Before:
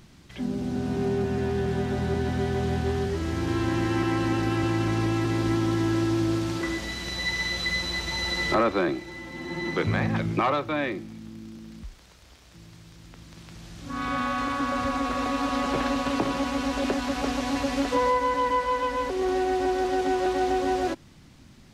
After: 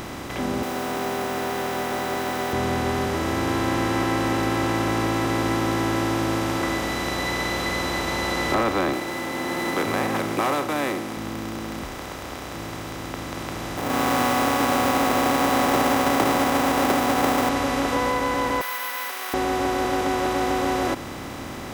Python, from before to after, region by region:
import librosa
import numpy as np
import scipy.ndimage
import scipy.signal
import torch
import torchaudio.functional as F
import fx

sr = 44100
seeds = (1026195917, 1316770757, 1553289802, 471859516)

y = fx.chain(x, sr, fx.highpass(hz=550.0, slope=12),
    fx.quant_dither(seeds[0], bits=8, dither='none'), at=(0.63, 2.53))
y = fx.chain(y, sr, fx.cvsd(bps=64000),
    fx.highpass(hz=250.0, slope=12), at=(8.93, 11.17))
y = fx.chain(y, sr, fx.halfwave_hold(),
    fx.highpass(hz=150.0, slope=12),
    fx.peak_eq(hz=760.0, db=8.0, octaves=0.45), at=(13.77, 17.49))
y = fx.chain(y, sr, fx.highpass(hz=1500.0, slope=24),
    fx.resample_bad(factor=3, down='filtered', up='zero_stuff'), at=(18.61, 19.34))
y = fx.bin_compress(y, sr, power=0.4)
y = fx.notch(y, sr, hz=4200.0, q=9.4)
y = y * librosa.db_to_amplitude(-4.0)